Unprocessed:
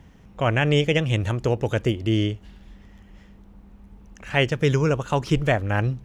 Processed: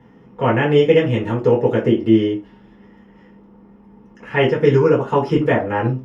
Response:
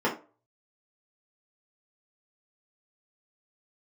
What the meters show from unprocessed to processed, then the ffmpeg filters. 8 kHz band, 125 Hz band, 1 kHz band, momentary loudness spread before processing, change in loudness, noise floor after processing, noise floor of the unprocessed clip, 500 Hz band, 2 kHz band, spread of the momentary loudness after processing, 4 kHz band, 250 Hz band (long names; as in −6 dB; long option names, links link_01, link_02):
below −10 dB, +1.0 dB, +6.0 dB, 5 LU, +6.0 dB, −48 dBFS, −50 dBFS, +9.0 dB, +2.0 dB, 7 LU, −1.5 dB, +7.5 dB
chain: -filter_complex "[1:a]atrim=start_sample=2205,afade=type=out:start_time=0.18:duration=0.01,atrim=end_sample=8379[link_01];[0:a][link_01]afir=irnorm=-1:irlink=0,volume=-8.5dB"